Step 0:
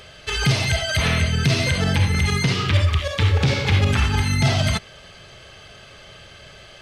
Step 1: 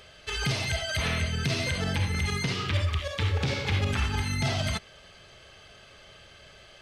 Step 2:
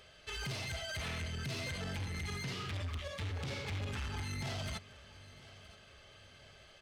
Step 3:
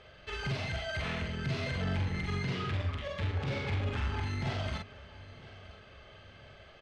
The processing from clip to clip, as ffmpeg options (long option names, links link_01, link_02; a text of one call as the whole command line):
ffmpeg -i in.wav -af "equalizer=frequency=130:width=1.5:gain=-3.5,volume=-7.5dB" out.wav
ffmpeg -i in.wav -af "asoftclip=type=tanh:threshold=-28dB,aecho=1:1:971|1942|2913:0.112|0.0471|0.0198,volume=-7.5dB" out.wav
ffmpeg -i in.wav -filter_complex "[0:a]adynamicsmooth=sensitivity=2.5:basefreq=3200,asplit=2[link_01][link_02];[link_02]adelay=44,volume=-3.5dB[link_03];[link_01][link_03]amix=inputs=2:normalize=0,volume=5dB" out.wav